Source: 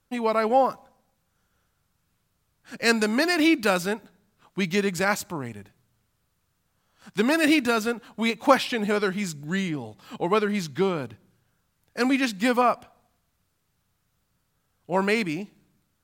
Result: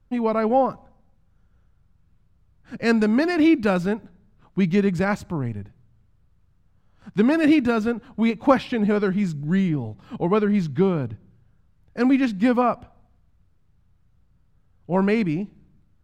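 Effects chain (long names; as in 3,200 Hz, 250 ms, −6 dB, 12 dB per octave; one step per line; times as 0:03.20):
RIAA equalisation playback
level −1 dB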